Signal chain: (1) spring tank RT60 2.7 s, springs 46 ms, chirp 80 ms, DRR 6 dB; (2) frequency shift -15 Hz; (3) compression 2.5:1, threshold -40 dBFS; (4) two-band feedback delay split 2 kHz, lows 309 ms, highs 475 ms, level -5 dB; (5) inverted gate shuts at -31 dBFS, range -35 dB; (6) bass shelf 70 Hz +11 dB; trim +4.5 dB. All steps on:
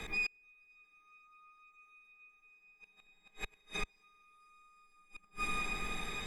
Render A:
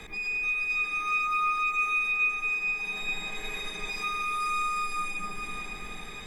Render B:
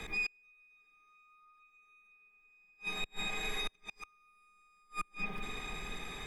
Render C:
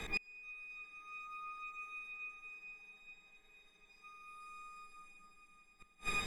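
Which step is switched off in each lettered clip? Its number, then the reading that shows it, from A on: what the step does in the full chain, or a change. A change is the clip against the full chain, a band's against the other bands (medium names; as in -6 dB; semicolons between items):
5, momentary loudness spread change -10 LU; 4, momentary loudness spread change -8 LU; 3, mean gain reduction 8.0 dB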